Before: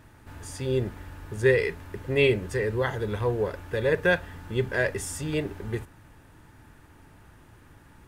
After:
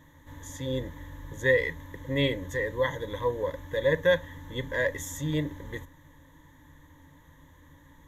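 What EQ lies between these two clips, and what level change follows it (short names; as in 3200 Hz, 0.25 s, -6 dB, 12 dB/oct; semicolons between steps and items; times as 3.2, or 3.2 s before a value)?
ripple EQ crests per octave 1.1, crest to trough 17 dB; -5.5 dB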